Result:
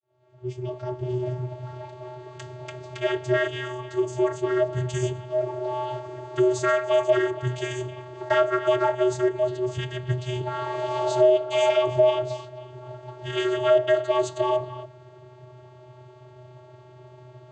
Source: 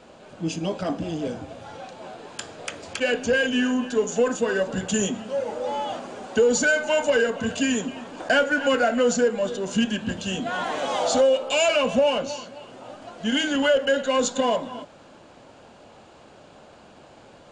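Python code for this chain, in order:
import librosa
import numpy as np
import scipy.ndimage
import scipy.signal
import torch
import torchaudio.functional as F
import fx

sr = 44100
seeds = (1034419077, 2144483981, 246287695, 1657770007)

y = fx.fade_in_head(x, sr, length_s=1.5)
y = fx.vocoder(y, sr, bands=16, carrier='square', carrier_hz=125.0)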